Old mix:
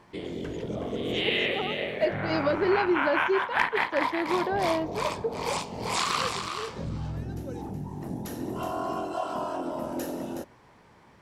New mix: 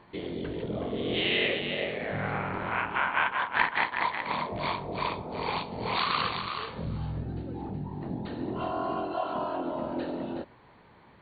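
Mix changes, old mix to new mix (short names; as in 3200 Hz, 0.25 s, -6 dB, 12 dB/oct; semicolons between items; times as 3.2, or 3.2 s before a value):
first voice -7.5 dB; second voice: muted; master: add brick-wall FIR low-pass 4600 Hz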